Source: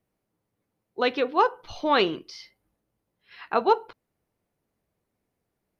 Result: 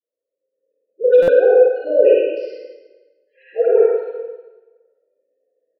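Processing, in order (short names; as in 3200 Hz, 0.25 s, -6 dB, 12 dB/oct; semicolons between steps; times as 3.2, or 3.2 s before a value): bin magnitudes rounded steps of 15 dB; vowel filter e; dynamic EQ 2300 Hz, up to -4 dB, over -49 dBFS, Q 0.75; AGC gain up to 15 dB; wavefolder -10.5 dBFS; dispersion highs, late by 81 ms, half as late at 780 Hz; spectral gate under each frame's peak -15 dB strong; speaker cabinet 300–5200 Hz, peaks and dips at 490 Hz +6 dB, 770 Hz +4 dB, 1100 Hz -8 dB, 1900 Hz -9 dB, 3000 Hz -7 dB; tapped delay 52/100 ms -5.5/-6 dB; reverb RT60 1.2 s, pre-delay 31 ms, DRR -4 dB; stuck buffer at 1.22, samples 256, times 9; gain -3 dB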